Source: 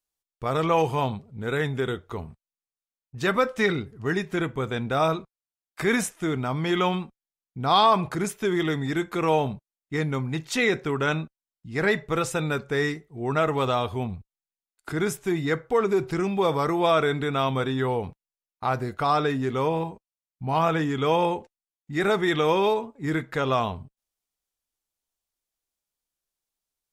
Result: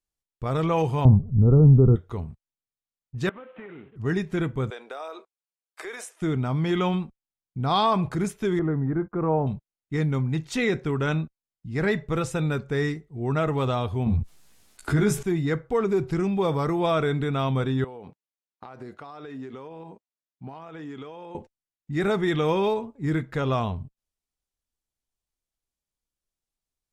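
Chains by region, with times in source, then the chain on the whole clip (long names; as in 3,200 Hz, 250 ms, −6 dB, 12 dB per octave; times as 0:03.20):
0:01.05–0:01.96: linear-phase brick-wall low-pass 1,400 Hz + spectral tilt −4.5 dB per octave
0:03.29–0:03.96: variable-slope delta modulation 16 kbit/s + high-pass filter 310 Hz + downward compressor 5 to 1, threshold −39 dBFS
0:04.70–0:06.22: inverse Chebyshev high-pass filter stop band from 160 Hz, stop band 50 dB + parametric band 9,000 Hz +3 dB 0.25 octaves + downward compressor 5 to 1, threshold −30 dBFS
0:08.59–0:09.47: noise gate −39 dBFS, range −24 dB + low-pass filter 1,400 Hz 24 dB per octave
0:14.06–0:15.23: double-tracking delay 14 ms −2.5 dB + envelope flattener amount 50%
0:17.84–0:21.35: high-pass filter 260 Hz + high-shelf EQ 9,900 Hz −11.5 dB + downward compressor 16 to 1, threshold −34 dBFS
whole clip: low-pass filter 12,000 Hz 12 dB per octave; low-shelf EQ 260 Hz +11.5 dB; level −4.5 dB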